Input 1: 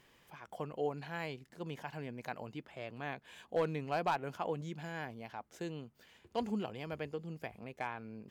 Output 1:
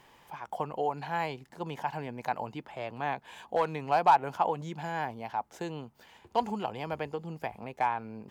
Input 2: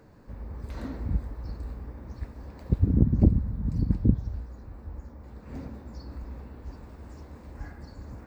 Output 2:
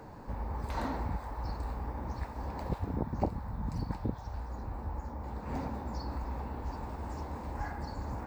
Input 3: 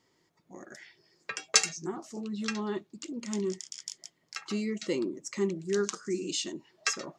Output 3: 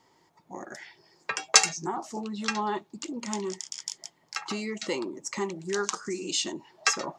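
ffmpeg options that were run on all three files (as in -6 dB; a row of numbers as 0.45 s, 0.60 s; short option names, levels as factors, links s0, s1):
-filter_complex "[0:a]equalizer=f=870:t=o:w=0.63:g=11,acrossover=split=560[s0][s1];[s0]acompressor=threshold=0.0126:ratio=6[s2];[s2][s1]amix=inputs=2:normalize=0,volume=1.68"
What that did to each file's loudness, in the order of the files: +8.0 LU, -10.0 LU, +3.5 LU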